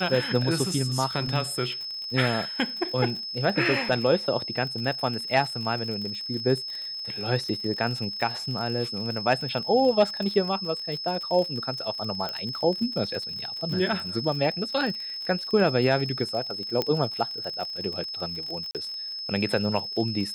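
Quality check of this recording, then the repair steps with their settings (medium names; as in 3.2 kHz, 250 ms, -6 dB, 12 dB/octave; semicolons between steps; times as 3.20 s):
crackle 49 per s -32 dBFS
whine 5.2 kHz -32 dBFS
12.29 s: pop -17 dBFS
16.82 s: pop -12 dBFS
18.71–18.75 s: dropout 38 ms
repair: de-click; band-stop 5.2 kHz, Q 30; interpolate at 18.71 s, 38 ms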